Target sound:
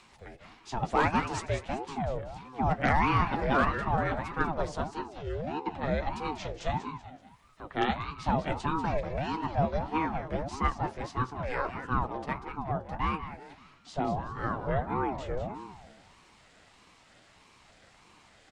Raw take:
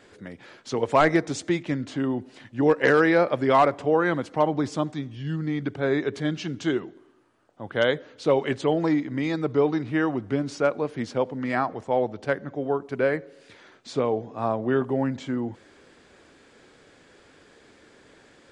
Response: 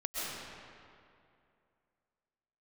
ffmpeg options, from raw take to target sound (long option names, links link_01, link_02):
-filter_complex "[0:a]acrossover=split=360|1600[link_01][link_02][link_03];[link_03]acompressor=mode=upward:threshold=-49dB:ratio=2.5[link_04];[link_01][link_02][link_04]amix=inputs=3:normalize=0,flanger=delay=6.5:depth=6.9:regen=-42:speed=0.66:shape=triangular,asplit=5[link_05][link_06][link_07][link_08][link_09];[link_06]adelay=191,afreqshift=63,volume=-9.5dB[link_10];[link_07]adelay=382,afreqshift=126,volume=-17.7dB[link_11];[link_08]adelay=573,afreqshift=189,volume=-25.9dB[link_12];[link_09]adelay=764,afreqshift=252,volume=-34dB[link_13];[link_05][link_10][link_11][link_12][link_13]amix=inputs=5:normalize=0,asettb=1/sr,asplit=3[link_14][link_15][link_16];[link_14]atrim=end=12.874[link_17];[link_15]atrim=start=12.87:end=13.94,asetpts=PTS-STARTPTS,afade=type=in:duration=0.004:curve=qsin,afade=type=out:start_time=1.066:duration=0.004:curve=qsin,aeval=exprs='0.15*(cos(1*acos(clip(val(0)/0.15,-1,1)))-cos(1*PI/2))+0.00473*(cos(7*acos(clip(val(0)/0.15,-1,1)))-cos(7*PI/2))':channel_layout=same[link_18];[link_16]atrim=start=13.936[link_19];[link_17][link_18]acrossfade=duration=0.004:curve1=hsin:curve2=qsin[link_20];[link_20][link_19]acrossfade=duration=0.004:curve1=qsin:curve2=hsin,aeval=exprs='val(0)*sin(2*PI*430*n/s+430*0.5/1.6*sin(2*PI*1.6*n/s))':channel_layout=same"